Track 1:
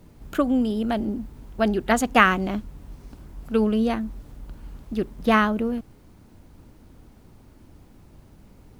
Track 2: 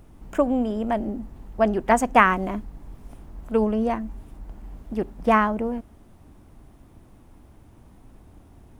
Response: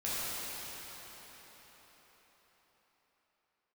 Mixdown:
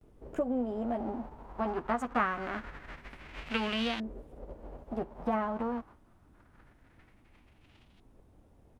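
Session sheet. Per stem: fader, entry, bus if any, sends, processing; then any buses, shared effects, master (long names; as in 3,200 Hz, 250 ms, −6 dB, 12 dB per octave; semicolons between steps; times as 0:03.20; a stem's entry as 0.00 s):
+2.5 dB, 0.00 s, no send, spectral envelope flattened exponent 0.3; downward expander −39 dBFS; auto-filter low-pass saw up 0.25 Hz 420–3,300 Hz; automatic ducking −9 dB, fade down 0.35 s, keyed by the second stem
−12.0 dB, 13 ms, no send, high-shelf EQ 8,900 Hz −4.5 dB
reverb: not used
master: downward compressor 2 to 1, threshold −33 dBFS, peak gain reduction 10.5 dB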